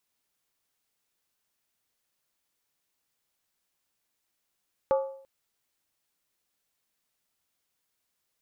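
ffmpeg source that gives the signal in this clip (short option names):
-f lavfi -i "aevalsrc='0.119*pow(10,-3*t/0.59)*sin(2*PI*540*t)+0.0501*pow(10,-3*t/0.467)*sin(2*PI*860.8*t)+0.0211*pow(10,-3*t/0.404)*sin(2*PI*1153.4*t)+0.00891*pow(10,-3*t/0.389)*sin(2*PI*1239.8*t)+0.00376*pow(10,-3*t/0.362)*sin(2*PI*1432.6*t)':d=0.34:s=44100"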